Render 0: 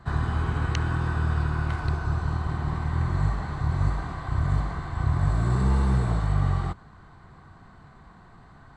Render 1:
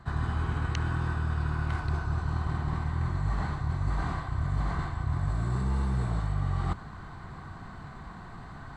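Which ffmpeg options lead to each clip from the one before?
-af "equalizer=f=480:w=1.7:g=-2.5,areverse,acompressor=threshold=-34dB:ratio=5,areverse,volume=7dB"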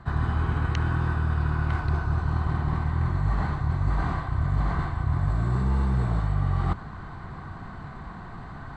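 -af "aemphasis=mode=reproduction:type=50kf,volume=4.5dB"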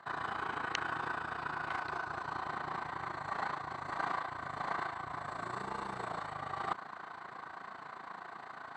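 -af "highpass=540,tremolo=f=28:d=0.75,volume=1.5dB"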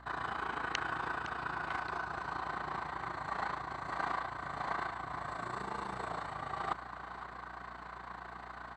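-af "aeval=exprs='val(0)+0.00158*(sin(2*PI*60*n/s)+sin(2*PI*2*60*n/s)/2+sin(2*PI*3*60*n/s)/3+sin(2*PI*4*60*n/s)/4+sin(2*PI*5*60*n/s)/5)':c=same,aecho=1:1:511:0.2"

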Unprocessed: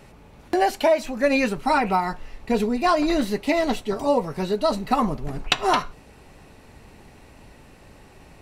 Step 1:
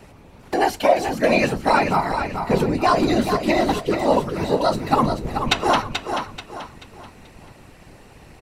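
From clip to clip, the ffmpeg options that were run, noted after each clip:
-filter_complex "[0:a]afftfilt=real='hypot(re,im)*cos(2*PI*random(0))':imag='hypot(re,im)*sin(2*PI*random(1))':win_size=512:overlap=0.75,asplit=2[a][b];[b]aecho=0:1:434|868|1302|1736:0.447|0.156|0.0547|0.0192[c];[a][c]amix=inputs=2:normalize=0,volume=8dB"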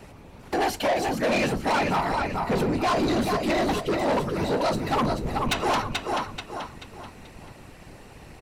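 -af "asoftclip=type=tanh:threshold=-19.5dB"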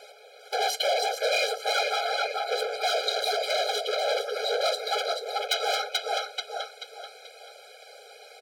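-af "asoftclip=type=hard:threshold=-25dB,equalizer=f=4k:w=1.6:g=9.5,afftfilt=real='re*eq(mod(floor(b*sr/1024/420),2),1)':imag='im*eq(mod(floor(b*sr/1024/420),2),1)':win_size=1024:overlap=0.75,volume=2.5dB"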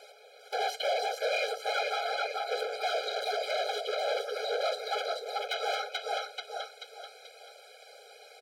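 -filter_complex "[0:a]acrossover=split=3300[a][b];[b]acompressor=threshold=-38dB:ratio=4:attack=1:release=60[c];[a][c]amix=inputs=2:normalize=0,volume=-4dB"

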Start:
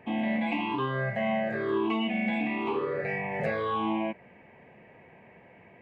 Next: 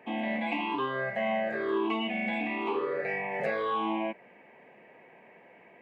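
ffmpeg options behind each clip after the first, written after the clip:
-af "highpass=270"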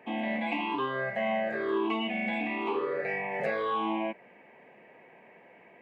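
-af anull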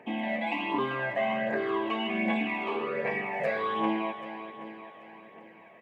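-filter_complex "[0:a]asplit=2[a][b];[b]aecho=0:1:392|784|1176|1568|1960|2352:0.299|0.161|0.0871|0.047|0.0254|0.0137[c];[a][c]amix=inputs=2:normalize=0,aphaser=in_gain=1:out_gain=1:delay=1.7:decay=0.4:speed=1.3:type=triangular"

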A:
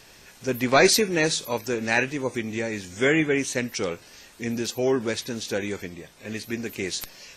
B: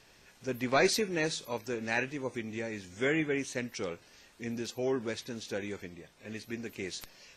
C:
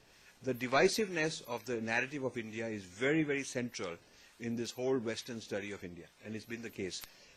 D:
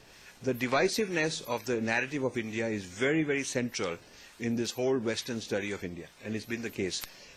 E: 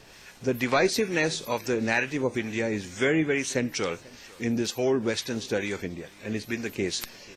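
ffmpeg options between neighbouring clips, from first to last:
-af "highshelf=f=7.5k:g=-7.5,volume=-8.5dB"
-filter_complex "[0:a]acrossover=split=830[a][b];[a]aeval=exprs='val(0)*(1-0.5/2+0.5/2*cos(2*PI*2.2*n/s))':c=same[c];[b]aeval=exprs='val(0)*(1-0.5/2-0.5/2*cos(2*PI*2.2*n/s))':c=same[d];[c][d]amix=inputs=2:normalize=0"
-af "acompressor=threshold=-34dB:ratio=2.5,volume=8dB"
-af "aecho=1:1:488:0.0668,volume=4dB"

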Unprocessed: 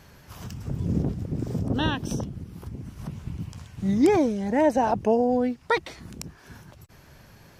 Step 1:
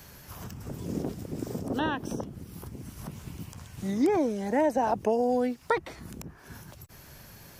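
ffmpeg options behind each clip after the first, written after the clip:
-filter_complex "[0:a]aemphasis=mode=production:type=50kf,acrossover=split=250|2000[a][b][c];[a]acompressor=threshold=-41dB:ratio=4[d];[b]acompressor=threshold=-22dB:ratio=4[e];[c]acompressor=threshold=-49dB:ratio=4[f];[d][e][f]amix=inputs=3:normalize=0"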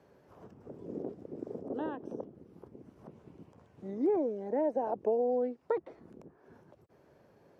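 -af "bandpass=f=450:t=q:w=1.6:csg=0,volume=-2dB"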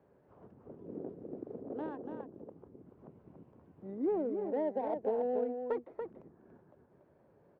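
-af "aecho=1:1:286:0.501,adynamicsmooth=sensitivity=3.5:basefreq=2k,volume=-3.5dB"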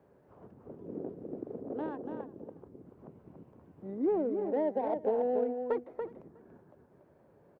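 -af "aecho=1:1:363:0.075,volume=3dB"

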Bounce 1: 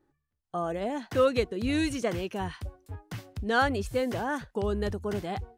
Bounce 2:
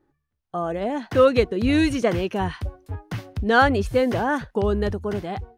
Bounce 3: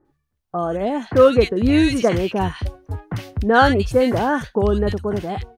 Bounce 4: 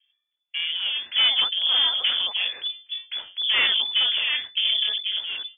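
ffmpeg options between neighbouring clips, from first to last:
-af "highshelf=f=4.8k:g=-8,dynaudnorm=f=280:g=7:m=4.5dB,equalizer=f=7.6k:w=7.8:g=-5,volume=4dB"
-filter_complex "[0:a]acrossover=split=1800[a][b];[b]adelay=50[c];[a][c]amix=inputs=2:normalize=0,volume=4dB"
-af "afreqshift=-38,aeval=exprs='(tanh(5.62*val(0)+0.7)-tanh(0.7))/5.62':c=same,lowpass=f=3k:t=q:w=0.5098,lowpass=f=3k:t=q:w=0.6013,lowpass=f=3k:t=q:w=0.9,lowpass=f=3k:t=q:w=2.563,afreqshift=-3500,volume=-1.5dB"

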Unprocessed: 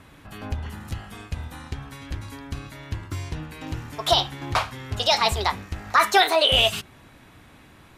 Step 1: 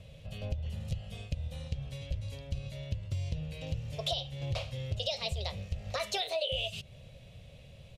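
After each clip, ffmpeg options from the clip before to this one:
-af "firequalizer=gain_entry='entry(150,0);entry(300,-24);entry(540,3);entry(860,-21);entry(1500,-24);entry(2700,-4);entry(13000,-17)':delay=0.05:min_phase=1,acompressor=threshold=-33dB:ratio=8,volume=2.5dB"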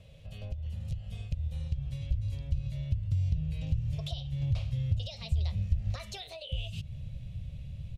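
-af "acompressor=threshold=-39dB:ratio=2,asubboost=boost=9:cutoff=160,volume=-3.5dB"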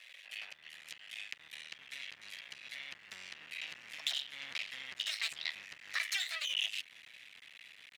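-af "aeval=exprs='max(val(0),0)':c=same,highpass=f=1.9k:t=q:w=4.2,volume=9dB"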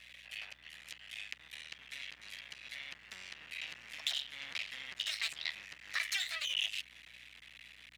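-af "aeval=exprs='val(0)+0.000282*(sin(2*PI*60*n/s)+sin(2*PI*2*60*n/s)/2+sin(2*PI*3*60*n/s)/3+sin(2*PI*4*60*n/s)/4+sin(2*PI*5*60*n/s)/5)':c=same"

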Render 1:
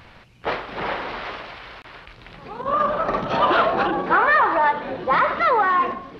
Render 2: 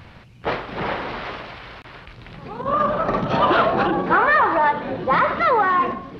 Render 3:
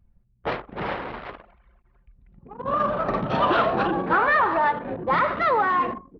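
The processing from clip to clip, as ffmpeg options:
-af "equalizer=f=120:w=0.49:g=7.5"
-af "anlmdn=100,volume=-3.5dB"

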